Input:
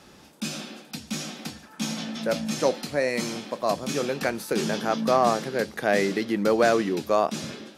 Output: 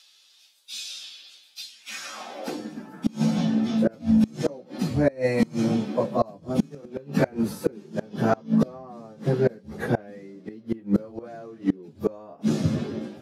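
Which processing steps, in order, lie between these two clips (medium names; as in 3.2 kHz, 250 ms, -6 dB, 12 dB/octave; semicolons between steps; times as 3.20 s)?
tilt shelf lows +8 dB; plain phase-vocoder stretch 1.7×; high-pass sweep 3.7 kHz -> 92 Hz, 1.65–3.14 s; inverted gate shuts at -15 dBFS, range -27 dB; trim +5.5 dB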